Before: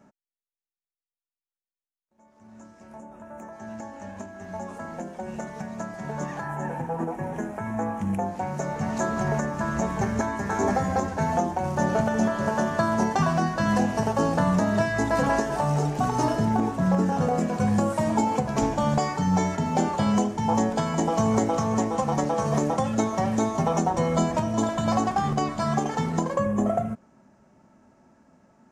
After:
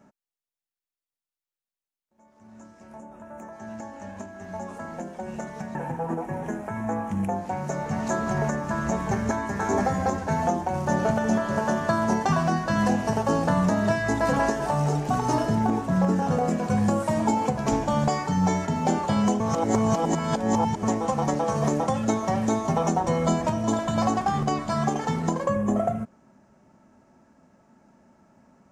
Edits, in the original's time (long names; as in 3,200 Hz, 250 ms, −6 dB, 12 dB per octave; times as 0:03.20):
0:05.75–0:06.65: remove
0:20.30–0:21.73: reverse